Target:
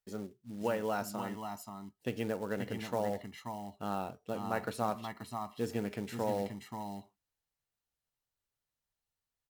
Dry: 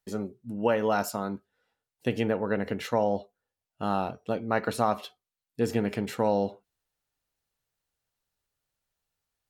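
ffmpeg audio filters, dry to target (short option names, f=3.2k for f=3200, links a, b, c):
-af "acrusher=bits=5:mode=log:mix=0:aa=0.000001,aecho=1:1:531|532:0.355|0.398,volume=-8.5dB"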